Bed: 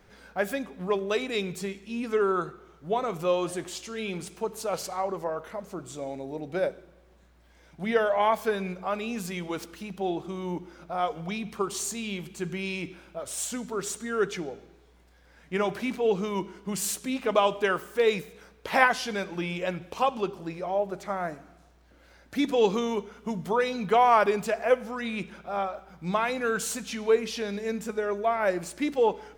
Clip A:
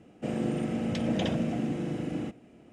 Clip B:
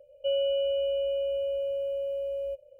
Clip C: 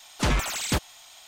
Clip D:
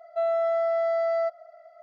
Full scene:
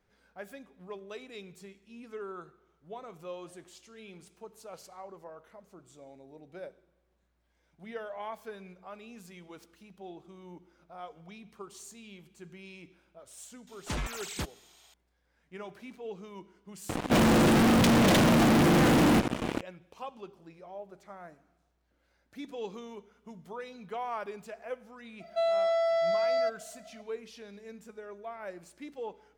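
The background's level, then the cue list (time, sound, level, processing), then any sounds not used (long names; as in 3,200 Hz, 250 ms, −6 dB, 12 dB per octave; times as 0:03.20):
bed −16 dB
0:13.67: mix in C −10.5 dB
0:16.89: mix in A −7.5 dB + fuzz pedal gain 53 dB, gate −53 dBFS
0:25.20: mix in D −1.5 dB + high shelf with overshoot 2,300 Hz +11.5 dB, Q 1.5
not used: B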